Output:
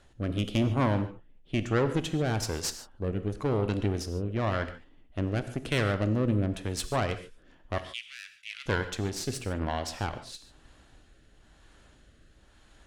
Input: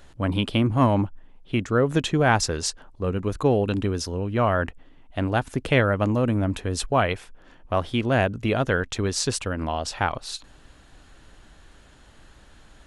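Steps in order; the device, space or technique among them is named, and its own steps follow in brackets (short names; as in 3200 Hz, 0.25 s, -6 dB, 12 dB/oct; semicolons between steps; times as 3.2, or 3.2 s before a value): overdriven rotary cabinet (tube stage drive 19 dB, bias 0.8; rotary speaker horn 1 Hz); 7.78–8.66 inverse Chebyshev high-pass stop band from 790 Hz, stop band 50 dB; non-linear reverb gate 0.17 s flat, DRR 9.5 dB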